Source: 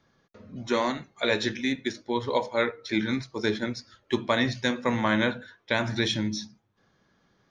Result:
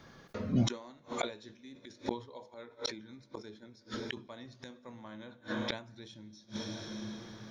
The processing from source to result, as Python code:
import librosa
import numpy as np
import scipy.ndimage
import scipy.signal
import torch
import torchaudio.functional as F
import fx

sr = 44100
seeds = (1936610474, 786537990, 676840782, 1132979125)

y = fx.dynamic_eq(x, sr, hz=2000.0, q=1.4, threshold_db=-43.0, ratio=4.0, max_db=-8)
y = fx.rev_plate(y, sr, seeds[0], rt60_s=4.1, hf_ratio=0.9, predelay_ms=0, drr_db=18.0)
y = fx.gate_flip(y, sr, shuts_db=-29.0, range_db=-34)
y = fx.sustainer(y, sr, db_per_s=140.0)
y = y * 10.0 ** (11.0 / 20.0)